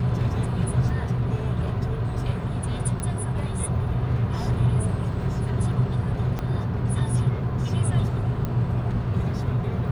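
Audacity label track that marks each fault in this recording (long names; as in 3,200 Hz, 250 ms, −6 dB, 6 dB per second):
0.890000	0.890000	drop-out 2.5 ms
3.000000	3.000000	click −17 dBFS
6.390000	6.390000	click −16 dBFS
8.450000	8.450000	click −16 dBFS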